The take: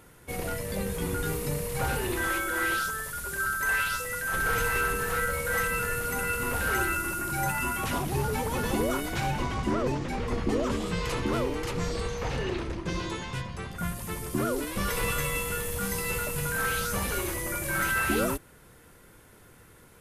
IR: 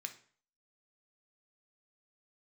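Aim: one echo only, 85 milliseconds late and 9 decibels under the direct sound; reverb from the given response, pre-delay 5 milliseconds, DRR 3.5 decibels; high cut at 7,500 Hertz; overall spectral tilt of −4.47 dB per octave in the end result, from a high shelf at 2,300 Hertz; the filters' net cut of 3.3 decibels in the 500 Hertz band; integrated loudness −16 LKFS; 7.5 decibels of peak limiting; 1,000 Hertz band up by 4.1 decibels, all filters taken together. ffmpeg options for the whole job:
-filter_complex "[0:a]lowpass=7500,equalizer=frequency=500:width_type=o:gain=-5.5,equalizer=frequency=1000:width_type=o:gain=8,highshelf=frequency=2300:gain=-3.5,alimiter=limit=-22dB:level=0:latency=1,aecho=1:1:85:0.355,asplit=2[link_01][link_02];[1:a]atrim=start_sample=2205,adelay=5[link_03];[link_02][link_03]afir=irnorm=-1:irlink=0,volume=-1dB[link_04];[link_01][link_04]amix=inputs=2:normalize=0,volume=13.5dB"

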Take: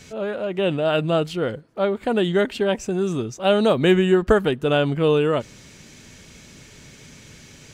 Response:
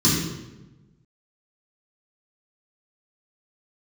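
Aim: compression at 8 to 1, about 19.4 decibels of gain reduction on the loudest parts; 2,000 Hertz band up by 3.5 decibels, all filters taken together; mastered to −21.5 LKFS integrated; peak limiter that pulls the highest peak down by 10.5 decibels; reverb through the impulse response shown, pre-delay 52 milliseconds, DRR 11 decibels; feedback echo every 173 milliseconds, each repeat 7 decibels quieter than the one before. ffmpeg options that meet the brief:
-filter_complex "[0:a]equalizer=frequency=2000:width_type=o:gain=5,acompressor=threshold=-32dB:ratio=8,alimiter=level_in=7dB:limit=-24dB:level=0:latency=1,volume=-7dB,aecho=1:1:173|346|519|692|865:0.447|0.201|0.0905|0.0407|0.0183,asplit=2[link_01][link_02];[1:a]atrim=start_sample=2205,adelay=52[link_03];[link_02][link_03]afir=irnorm=-1:irlink=0,volume=-27dB[link_04];[link_01][link_04]amix=inputs=2:normalize=0,volume=15dB"

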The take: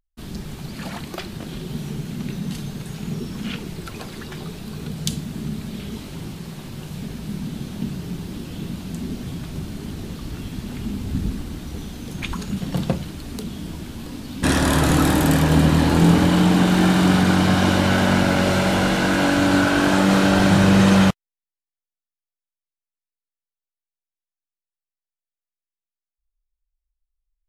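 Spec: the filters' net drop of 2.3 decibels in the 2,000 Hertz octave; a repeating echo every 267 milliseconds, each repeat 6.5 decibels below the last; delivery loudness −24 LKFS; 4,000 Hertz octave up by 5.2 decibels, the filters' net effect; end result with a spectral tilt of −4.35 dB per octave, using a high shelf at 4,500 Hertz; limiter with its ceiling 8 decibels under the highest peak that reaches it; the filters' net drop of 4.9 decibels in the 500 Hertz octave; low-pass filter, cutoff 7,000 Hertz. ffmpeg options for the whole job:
ffmpeg -i in.wav -af "lowpass=7000,equalizer=frequency=500:width_type=o:gain=-6.5,equalizer=frequency=2000:width_type=o:gain=-5,equalizer=frequency=4000:width_type=o:gain=7,highshelf=frequency=4500:gain=3.5,alimiter=limit=-10dB:level=0:latency=1,aecho=1:1:267|534|801|1068|1335|1602:0.473|0.222|0.105|0.0491|0.0231|0.0109,volume=-1.5dB" out.wav

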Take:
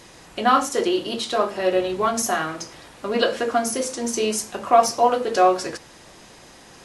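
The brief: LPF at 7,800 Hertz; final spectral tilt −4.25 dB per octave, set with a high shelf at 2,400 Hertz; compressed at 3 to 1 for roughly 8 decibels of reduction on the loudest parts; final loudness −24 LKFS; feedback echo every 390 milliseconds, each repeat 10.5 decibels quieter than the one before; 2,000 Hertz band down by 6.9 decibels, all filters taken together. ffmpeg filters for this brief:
ffmpeg -i in.wav -af "lowpass=7800,equalizer=frequency=2000:width_type=o:gain=-6,highshelf=frequency=2400:gain=-8,acompressor=threshold=-22dB:ratio=3,aecho=1:1:390|780|1170:0.299|0.0896|0.0269,volume=3.5dB" out.wav

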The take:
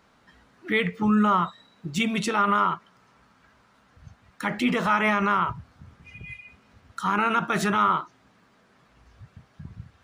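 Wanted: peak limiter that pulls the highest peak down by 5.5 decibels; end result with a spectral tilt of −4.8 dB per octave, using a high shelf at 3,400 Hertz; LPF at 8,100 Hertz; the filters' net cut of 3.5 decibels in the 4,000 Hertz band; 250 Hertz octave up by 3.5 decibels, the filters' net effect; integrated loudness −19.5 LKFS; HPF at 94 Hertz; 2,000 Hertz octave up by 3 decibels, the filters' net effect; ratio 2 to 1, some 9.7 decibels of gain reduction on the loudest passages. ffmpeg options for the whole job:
ffmpeg -i in.wav -af "highpass=94,lowpass=8100,equalizer=frequency=250:width_type=o:gain=4.5,equalizer=frequency=2000:width_type=o:gain=6.5,highshelf=frequency=3400:gain=-6,equalizer=frequency=4000:width_type=o:gain=-4,acompressor=threshold=-33dB:ratio=2,volume=13.5dB,alimiter=limit=-8dB:level=0:latency=1" out.wav

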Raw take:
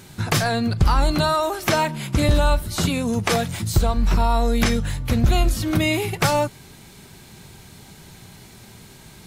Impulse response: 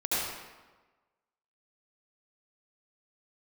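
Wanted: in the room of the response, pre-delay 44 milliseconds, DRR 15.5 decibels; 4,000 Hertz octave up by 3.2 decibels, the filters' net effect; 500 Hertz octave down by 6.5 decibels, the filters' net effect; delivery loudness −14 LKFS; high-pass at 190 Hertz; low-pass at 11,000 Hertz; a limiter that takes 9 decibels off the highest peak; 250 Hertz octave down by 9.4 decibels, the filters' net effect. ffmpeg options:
-filter_complex "[0:a]highpass=190,lowpass=11000,equalizer=frequency=250:width_type=o:gain=-8,equalizer=frequency=500:width_type=o:gain=-7,equalizer=frequency=4000:width_type=o:gain=4,alimiter=limit=-15.5dB:level=0:latency=1,asplit=2[link_01][link_02];[1:a]atrim=start_sample=2205,adelay=44[link_03];[link_02][link_03]afir=irnorm=-1:irlink=0,volume=-25dB[link_04];[link_01][link_04]amix=inputs=2:normalize=0,volume=12.5dB"

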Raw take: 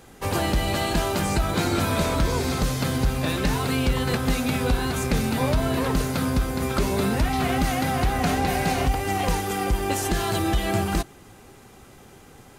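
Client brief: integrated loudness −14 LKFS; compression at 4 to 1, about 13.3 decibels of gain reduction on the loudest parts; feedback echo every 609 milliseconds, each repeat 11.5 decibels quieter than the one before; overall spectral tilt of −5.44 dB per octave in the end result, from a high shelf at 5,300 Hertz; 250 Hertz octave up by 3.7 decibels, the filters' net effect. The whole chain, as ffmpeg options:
ffmpeg -i in.wav -af "equalizer=frequency=250:width_type=o:gain=4.5,highshelf=frequency=5300:gain=-5,acompressor=threshold=-33dB:ratio=4,aecho=1:1:609|1218|1827:0.266|0.0718|0.0194,volume=20.5dB" out.wav

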